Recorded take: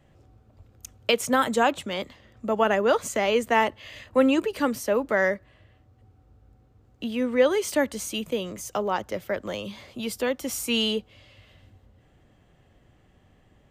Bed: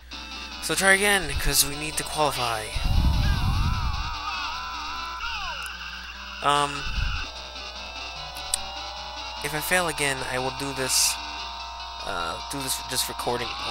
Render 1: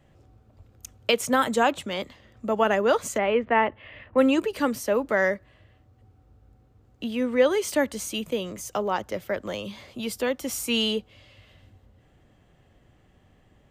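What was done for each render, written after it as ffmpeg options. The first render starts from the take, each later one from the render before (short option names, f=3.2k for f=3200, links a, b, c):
-filter_complex "[0:a]asplit=3[a][b][c];[a]afade=t=out:st=3.17:d=0.02[d];[b]lowpass=f=2.6k:w=0.5412,lowpass=f=2.6k:w=1.3066,afade=t=in:st=3.17:d=0.02,afade=t=out:st=4.17:d=0.02[e];[c]afade=t=in:st=4.17:d=0.02[f];[d][e][f]amix=inputs=3:normalize=0"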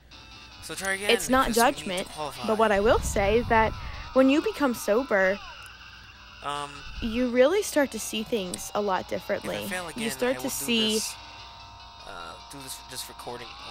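-filter_complex "[1:a]volume=-10.5dB[a];[0:a][a]amix=inputs=2:normalize=0"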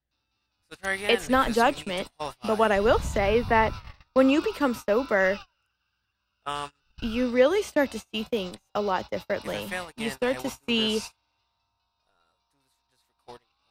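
-filter_complex "[0:a]acrossover=split=4100[a][b];[b]acompressor=threshold=-40dB:ratio=4:attack=1:release=60[c];[a][c]amix=inputs=2:normalize=0,agate=range=-31dB:threshold=-33dB:ratio=16:detection=peak"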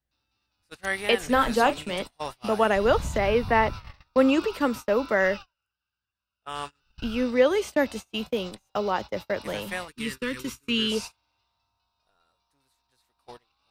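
-filter_complex "[0:a]asettb=1/sr,asplit=3[a][b][c];[a]atrim=end=1.224[d];[b]atrim=start=1.22:end=1.96,asetpts=PTS-STARTPTS,afade=t=in:d=0.004:c=qsin,afade=t=out:st=0.736:d=0.004:c=qsin,asplit=2[e][f];[f]adelay=33,volume=-11.5dB[g];[e][g]amix=inputs=2:normalize=0,atrim=end_sample=32634[h];[c]atrim=start=1.956[i];[d][h]acrossfade=d=0.004:c1=hsin:c2=qsin[j];[j][i]acrossfade=d=0.004:c1=qsin:c2=hsin,asettb=1/sr,asplit=3[k][l][m];[k]atrim=end=9.884[n];[l]atrim=start=9.88:end=10.92,asetpts=PTS-STARTPTS,afade=t=in:d=0.004:c=qsin,afade=t=out:st=1.036:d=0.004:c=qsin,asuperstop=centerf=710:order=4:qfactor=0.92[o];[m]atrim=start=10.916[p];[n][o]acrossfade=d=0.004:c1=hsin:c2=qsin[q];[q][p]acrossfade=d=0.004:c1=qsin:c2=hsin,asplit=3[r][s][t];[r]atrim=end=5.54,asetpts=PTS-STARTPTS,afade=t=out:st=5.36:d=0.18:silence=0.281838[u];[s]atrim=start=5.54:end=6.43,asetpts=PTS-STARTPTS,volume=-11dB[v];[t]atrim=start=6.43,asetpts=PTS-STARTPTS,afade=t=in:d=0.18:silence=0.281838[w];[u][v][w]concat=n=3:v=0:a=1"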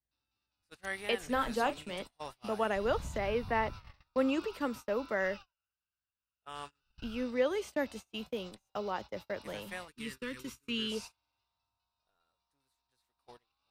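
-af "volume=-10dB"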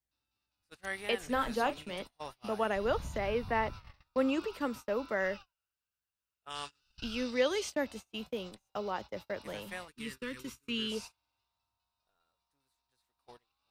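-filter_complex "[0:a]asettb=1/sr,asplit=3[a][b][c];[a]atrim=end=1.534[d];[b]atrim=start=1.53:end=3.17,asetpts=PTS-STARTPTS,afade=t=in:d=0.004:c=qsin,afade=t=out:st=1.636:d=0.004:c=qsin,bandreject=f=7.8k:w=5.4[e];[c]atrim=start=3.166[f];[d][e]acrossfade=d=0.004:c1=hsin:c2=qsin[g];[g][f]acrossfade=d=0.004:c1=qsin:c2=hsin,asettb=1/sr,asplit=3[h][i][j];[h]atrim=end=6.504[k];[i]atrim=start=6.5:end=7.73,asetpts=PTS-STARTPTS,afade=t=in:d=0.004:c=qsin,afade=t=out:st=1.226:d=0.004:c=qsin,equalizer=f=5k:t=o:w=1.9:g=11.5[l];[j]atrim=start=7.726[m];[k][l]acrossfade=d=0.004:c1=hsin:c2=qsin[n];[n][m]acrossfade=d=0.004:c1=qsin:c2=hsin"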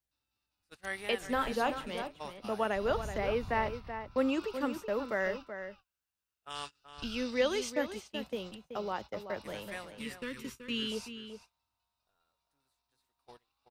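-filter_complex "[0:a]asplit=2[a][b];[b]adelay=379,volume=-9dB,highshelf=f=4k:g=-8.53[c];[a][c]amix=inputs=2:normalize=0"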